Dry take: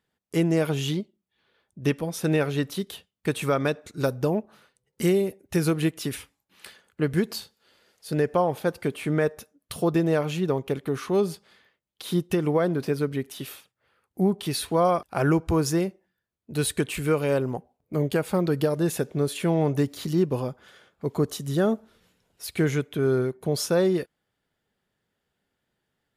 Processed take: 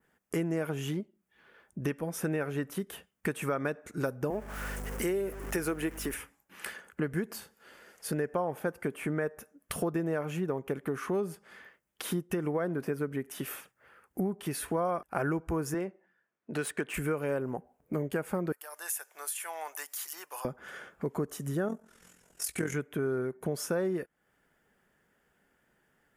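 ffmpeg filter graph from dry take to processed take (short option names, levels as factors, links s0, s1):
-filter_complex "[0:a]asettb=1/sr,asplit=3[s0][s1][s2];[s0]atrim=end=4.304[s3];[s1]atrim=start=4.3:end=6.14,asetpts=PTS-STARTPTS,afade=t=in:d=0.004:c=qsin,afade=t=out:st=1.836:d=0.004:c=qsin,aeval=exprs='val(0)+0.5*0.0119*sgn(val(0))':c=same,highpass=300,aeval=exprs='val(0)+0.01*(sin(2*PI*50*n/s)+sin(2*PI*2*50*n/s)/2+sin(2*PI*3*50*n/s)/3+sin(2*PI*4*50*n/s)/4+sin(2*PI*5*50*n/s)/5)':c=same[s4];[s2]atrim=start=6.136[s5];[s3][s4]acrossfade=d=0.004:c1=hsin:c2=qsin[s6];[s6][s5]acrossfade=d=0.004:c1=qsin:c2=hsin,asettb=1/sr,asplit=3[s7][s8][s9];[s7]atrim=end=15.744[s10];[s8]atrim=start=15.74:end=16.94,asetpts=PTS-STARTPTS,afade=t=in:d=0.004:c=qsin,afade=t=out:st=1.196:d=0.004:c=qsin,adynamicsmooth=sensitivity=5:basefreq=4200,highpass=120,lowshelf=f=280:g=-9[s11];[s9]atrim=start=16.936[s12];[s10][s11]acrossfade=d=0.004:c1=hsin:c2=qsin[s13];[s13][s12]acrossfade=d=0.004:c1=qsin:c2=hsin,asettb=1/sr,asplit=3[s14][s15][s16];[s14]atrim=end=18.524[s17];[s15]atrim=start=18.52:end=20.45,asetpts=PTS-STARTPTS,afade=t=in:d=0.004:c=qsin,afade=t=out:st=1.926:d=0.004:c=qsin,highpass=f=830:t=q:w=2.1,aderivative[s18];[s16]atrim=start=20.446[s19];[s17][s18]acrossfade=d=0.004:c1=hsin:c2=qsin[s20];[s20][s19]acrossfade=d=0.004:c1=qsin:c2=hsin,asettb=1/sr,asplit=3[s21][s22][s23];[s21]atrim=end=21.684[s24];[s22]atrim=start=21.68:end=22.74,asetpts=PTS-STARTPTS,afade=t=in:d=0.004:c=qsin,afade=t=out:st=1.056:d=0.004:c=qsin,equalizer=f=7500:t=o:w=1.5:g=12,tremolo=f=43:d=0.75,asplit=2[s25][s26];[s26]adelay=17,volume=0.237[s27];[s25][s27]amix=inputs=2:normalize=0,atrim=end_sample=46746[s28];[s23]atrim=start=22.736[s29];[s24][s28]acrossfade=d=0.004:c1=hsin:c2=qsin[s30];[s30][s29]acrossfade=d=0.004:c1=qsin:c2=hsin,adynamicequalizer=threshold=0.00447:dfrequency=4600:dqfactor=0.77:tfrequency=4600:tqfactor=0.77:attack=5:release=100:ratio=0.375:range=2.5:mode=cutabove:tftype=bell,acompressor=threshold=0.00891:ratio=3,equalizer=f=100:t=o:w=0.67:g=-9,equalizer=f=1600:t=o:w=0.67:g=5,equalizer=f=4000:t=o:w=0.67:g=-12,volume=2.37"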